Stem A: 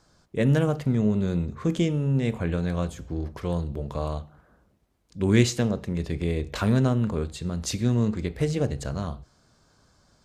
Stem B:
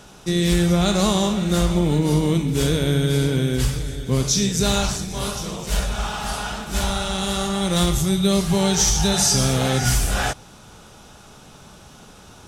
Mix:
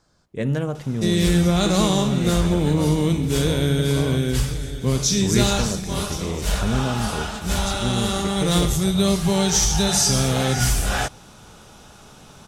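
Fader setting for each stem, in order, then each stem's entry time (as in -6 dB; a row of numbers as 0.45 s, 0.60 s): -2.0 dB, -0.5 dB; 0.00 s, 0.75 s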